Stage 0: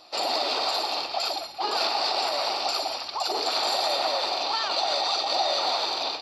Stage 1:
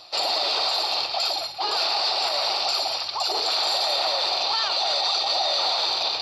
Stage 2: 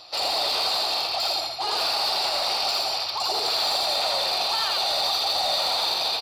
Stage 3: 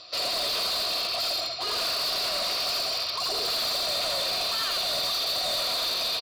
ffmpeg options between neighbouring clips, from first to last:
-af "equalizer=f=125:t=o:w=1:g=9,equalizer=f=250:t=o:w=1:g=-10,equalizer=f=4k:t=o:w=1:g=5,areverse,acompressor=mode=upward:threshold=-26dB:ratio=2.5,areverse,alimiter=limit=-16dB:level=0:latency=1:release=10,volume=1.5dB"
-filter_complex "[0:a]asoftclip=type=tanh:threshold=-20dB,asplit=2[a][b];[b]aecho=0:1:83:0.668[c];[a][c]amix=inputs=2:normalize=0"
-af "aresample=16000,aresample=44100,asuperstop=centerf=840:order=4:qfactor=3.4,asoftclip=type=hard:threshold=-25dB"

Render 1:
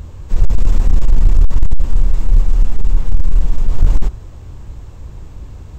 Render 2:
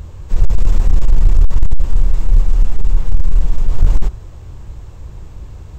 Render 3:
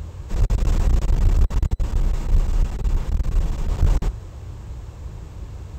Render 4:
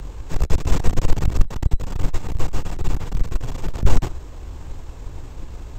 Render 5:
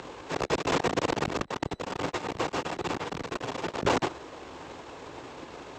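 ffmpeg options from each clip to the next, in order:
-af "equalizer=f=250:t=o:w=0.23:g=-8.5"
-af "highpass=47"
-af "afreqshift=-38,aeval=exprs='0.562*(cos(1*acos(clip(val(0)/0.562,-1,1)))-cos(1*PI/2))+0.141*(cos(4*acos(clip(val(0)/0.562,-1,1)))-cos(4*PI/2))':c=same,volume=2dB"
-af "highpass=340,lowpass=4.7k,volume=5dB"

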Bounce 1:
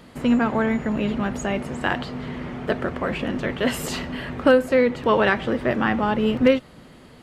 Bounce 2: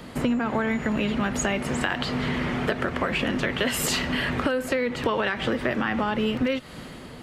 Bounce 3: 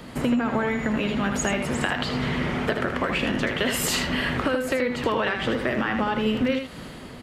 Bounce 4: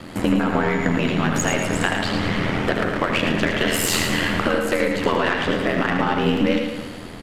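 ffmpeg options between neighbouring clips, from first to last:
-filter_complex "[0:a]acrossover=split=240|1300[a][b][c];[c]dynaudnorm=f=110:g=9:m=6dB[d];[a][b][d]amix=inputs=3:normalize=0,alimiter=limit=-11dB:level=0:latency=1:release=99,acompressor=threshold=-28dB:ratio=6,volume=6dB"
-af "aecho=1:1:79:0.473"
-af "aeval=exprs='val(0)*sin(2*PI*42*n/s)':c=same,aeval=exprs='0.282*(cos(1*acos(clip(val(0)/0.282,-1,1)))-cos(1*PI/2))+0.0112*(cos(8*acos(clip(val(0)/0.282,-1,1)))-cos(8*PI/2))':c=same,aecho=1:1:112|224|336|448|560|672:0.447|0.219|0.107|0.0526|0.0258|0.0126,volume=6dB"

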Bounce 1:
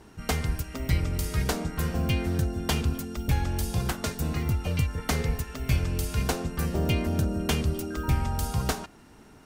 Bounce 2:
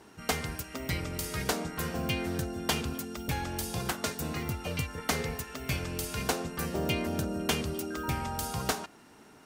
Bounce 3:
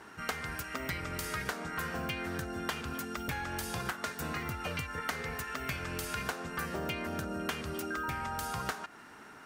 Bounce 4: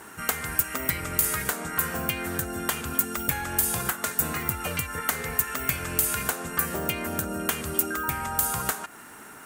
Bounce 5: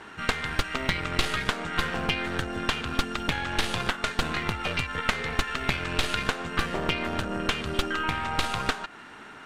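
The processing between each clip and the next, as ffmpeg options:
-af "highpass=f=280:p=1"
-af "equalizer=f=1.5k:w=1:g=11,acompressor=threshold=-32dB:ratio=6,volume=-1dB"
-af "aexciter=amount=3.7:drive=7.3:freq=7.1k,volume=5.5dB"
-af "aeval=exprs='0.596*(cos(1*acos(clip(val(0)/0.596,-1,1)))-cos(1*PI/2))+0.168*(cos(6*acos(clip(val(0)/0.596,-1,1)))-cos(6*PI/2))':c=same,lowpass=f=3.6k:t=q:w=1.7"

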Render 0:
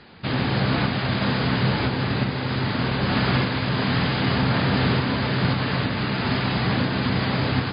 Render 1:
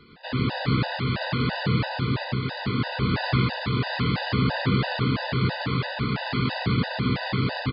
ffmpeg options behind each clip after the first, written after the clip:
-af "aecho=1:1:107:0.708,afftfilt=real='re*gt(sin(2*PI*3*pts/sr)*(1-2*mod(floor(b*sr/1024/500),2)),0)':imag='im*gt(sin(2*PI*3*pts/sr)*(1-2*mod(floor(b*sr/1024/500),2)),0)':win_size=1024:overlap=0.75,volume=-2dB"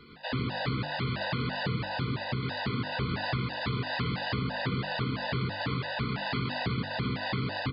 -af "bandreject=f=50:t=h:w=6,bandreject=f=100:t=h:w=6,bandreject=f=150:t=h:w=6,bandreject=f=200:t=h:w=6,bandreject=f=250:t=h:w=6,bandreject=f=300:t=h:w=6,bandreject=f=350:t=h:w=6,acompressor=threshold=-28dB:ratio=6"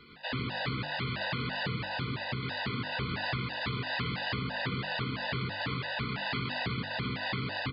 -af "equalizer=f=2.5k:w=0.67:g=5.5,volume=-4dB"

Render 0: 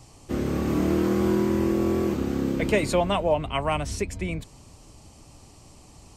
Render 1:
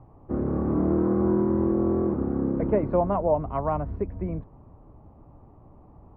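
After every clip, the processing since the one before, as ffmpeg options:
-af "lowpass=f=1.2k:w=0.5412,lowpass=f=1.2k:w=1.3066"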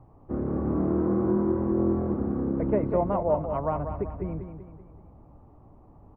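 -af "aecho=1:1:192|384|576|768|960:0.376|0.18|0.0866|0.0416|0.02,volume=-2.5dB"

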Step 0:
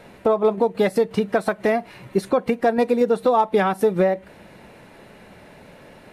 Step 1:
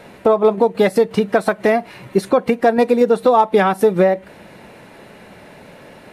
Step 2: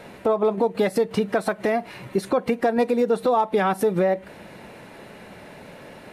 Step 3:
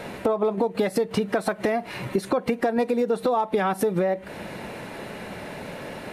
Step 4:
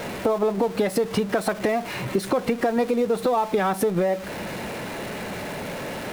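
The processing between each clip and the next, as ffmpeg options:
-af "lowshelf=f=68:g=-8,volume=5dB"
-af "alimiter=limit=-10.5dB:level=0:latency=1:release=128,volume=-1.5dB"
-af "acompressor=threshold=-29dB:ratio=3,volume=6.5dB"
-af "aeval=exprs='val(0)+0.5*0.0224*sgn(val(0))':c=same"

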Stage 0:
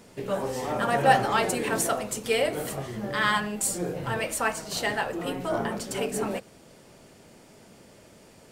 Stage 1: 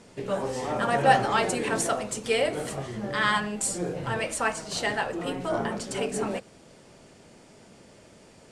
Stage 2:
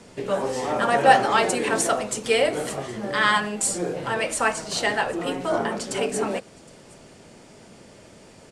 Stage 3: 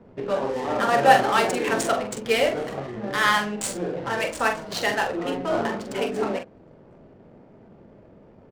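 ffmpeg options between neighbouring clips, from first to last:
-af "lowpass=f=9.7k:w=0.5412,lowpass=f=9.7k:w=1.3066"
-filter_complex "[0:a]acrossover=split=200|590|4300[a][b][c][d];[a]acompressor=threshold=-47dB:ratio=6[e];[d]aecho=1:1:766:0.0841[f];[e][b][c][f]amix=inputs=4:normalize=0,volume=4.5dB"
-filter_complex "[0:a]adynamicsmooth=sensitivity=5:basefreq=730,asplit=2[a][b];[b]adelay=44,volume=-7dB[c];[a][c]amix=inputs=2:normalize=0,volume=-1dB"

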